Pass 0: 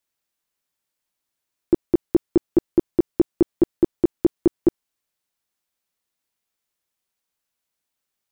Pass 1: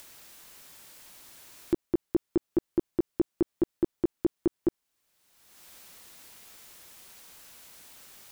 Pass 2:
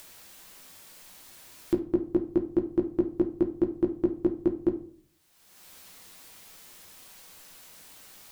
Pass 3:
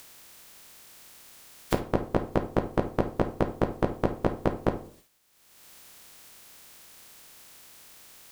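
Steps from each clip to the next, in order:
in parallel at -1.5 dB: upward compressor, threshold -15 dBFS; on the sum: limiter -10.5 dBFS, peak gain reduction 9 dB; gain -6 dB
reverb RT60 0.55 s, pre-delay 6 ms, DRR 4.5 dB
spectral limiter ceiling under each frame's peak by 27 dB

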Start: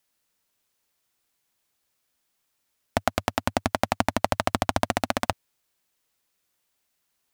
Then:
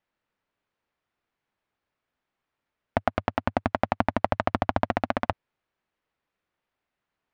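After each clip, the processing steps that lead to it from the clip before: LPF 2100 Hz 12 dB/oct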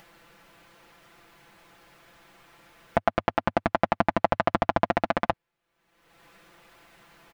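comb 5.9 ms, depth 76%; upward compressor, threshold -34 dBFS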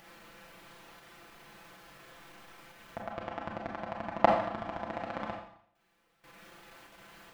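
level quantiser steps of 19 dB; Schroeder reverb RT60 0.64 s, combs from 29 ms, DRR -0.5 dB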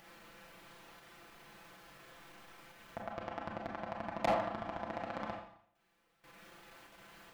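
hard clip -22 dBFS, distortion -6 dB; gain -3 dB

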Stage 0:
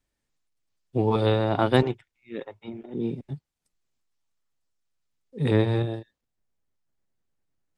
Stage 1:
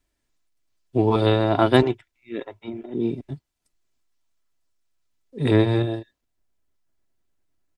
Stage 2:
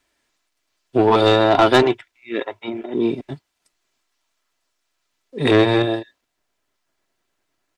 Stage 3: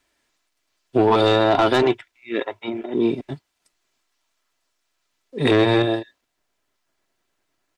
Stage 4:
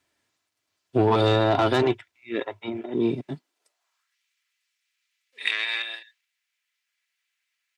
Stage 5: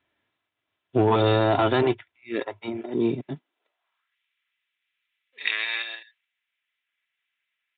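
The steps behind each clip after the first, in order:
comb 3 ms, depth 38%; gain +3.5 dB
overdrive pedal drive 20 dB, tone 4600 Hz, clips at -1 dBFS; gain -1.5 dB
limiter -9 dBFS, peak gain reduction 6 dB
high-pass sweep 93 Hz -> 2200 Hz, 3.1–4.19; gain -4.5 dB
downsampling 8000 Hz

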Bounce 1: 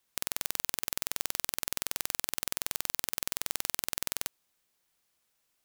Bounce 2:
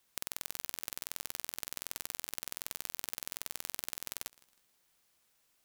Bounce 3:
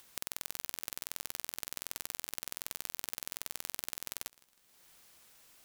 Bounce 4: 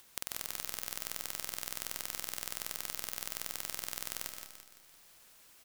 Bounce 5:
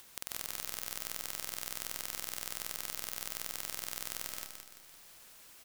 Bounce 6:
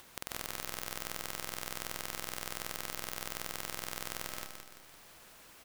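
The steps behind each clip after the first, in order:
compressor 12:1, threshold -34 dBFS, peak gain reduction 10 dB; warbling echo 0.159 s, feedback 35%, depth 150 cents, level -22 dB; gain +3 dB
upward compressor, threshold -49 dBFS
feedback echo 0.17 s, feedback 47%, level -7 dB; reverb RT60 0.45 s, pre-delay 98 ms, DRR 9 dB
limiter -14.5 dBFS, peak gain reduction 7.5 dB; gain +4 dB
high shelf 2900 Hz -9.5 dB; gain +6.5 dB

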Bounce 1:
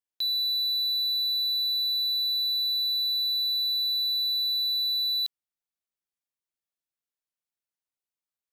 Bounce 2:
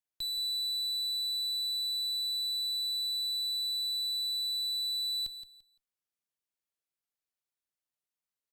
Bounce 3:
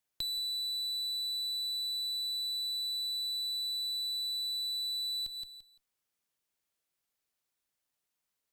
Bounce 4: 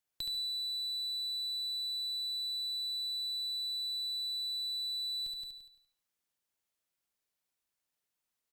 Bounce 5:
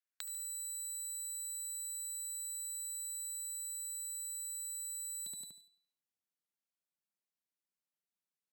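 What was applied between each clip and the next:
tube stage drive 33 dB, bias 0.5; on a send: feedback echo 0.171 s, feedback 23%, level -11 dB
compressor, threshold -42 dBFS, peak gain reduction 9.5 dB; gain +7 dB
feedback echo 72 ms, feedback 33%, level -6 dB; gain -3 dB
added harmonics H 3 -8 dB, 6 -22 dB, 7 -42 dB, 8 -12 dB, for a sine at -25.5 dBFS; high-pass sweep 1600 Hz -> 180 Hz, 3.27–4.29

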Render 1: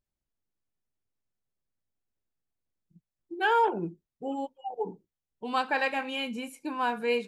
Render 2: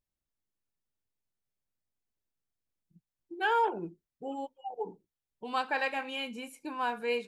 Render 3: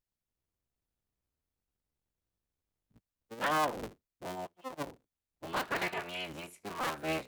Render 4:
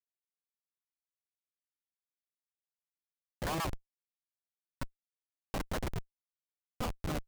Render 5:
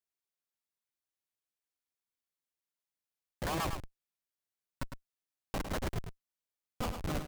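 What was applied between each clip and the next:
dynamic EQ 170 Hz, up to -5 dB, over -46 dBFS, Q 0.86; gain -3 dB
cycle switcher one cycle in 3, inverted; gain -3 dB
wow and flutter 120 cents; LFO low-pass saw down 7.5 Hz 500–1900 Hz; Schmitt trigger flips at -27.5 dBFS; gain +3.5 dB
echo 0.105 s -7.5 dB

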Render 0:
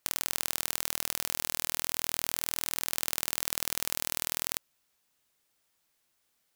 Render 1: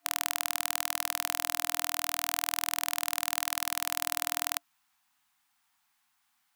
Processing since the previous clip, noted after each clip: FFT band-reject 300–690 Hz; EQ curve 140 Hz 0 dB, 1000 Hz +13 dB, 5500 Hz +5 dB; gain -5.5 dB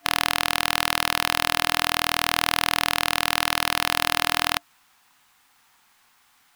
half-waves squared off; in parallel at +3 dB: limiter -9.5 dBFS, peak gain reduction 8.5 dB; on the sum: soft clip -3.5 dBFS, distortion -14 dB; gain +2.5 dB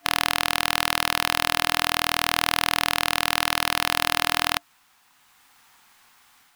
AGC gain up to 4 dB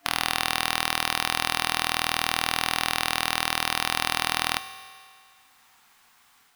reverb RT60 2.2 s, pre-delay 3 ms, DRR 9.5 dB; gain -3 dB

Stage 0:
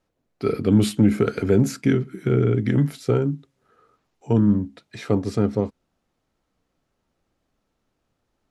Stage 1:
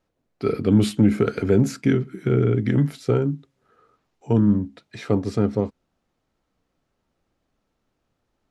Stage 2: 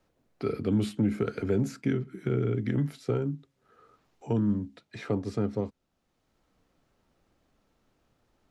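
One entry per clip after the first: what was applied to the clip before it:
high shelf 10000 Hz -7.5 dB
three-band squash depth 40%; gain -8.5 dB

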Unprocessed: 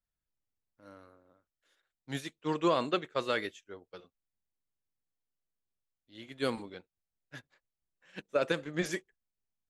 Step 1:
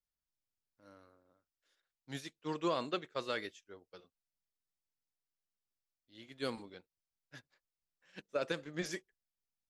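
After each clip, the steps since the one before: bell 5100 Hz +6.5 dB 0.6 oct; gain -6.5 dB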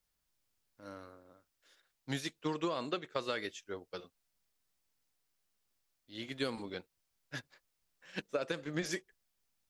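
compressor 8:1, threshold -43 dBFS, peak gain reduction 14.5 dB; gain +11 dB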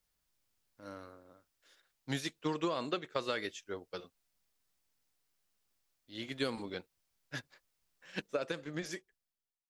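ending faded out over 1.49 s; gain +1 dB

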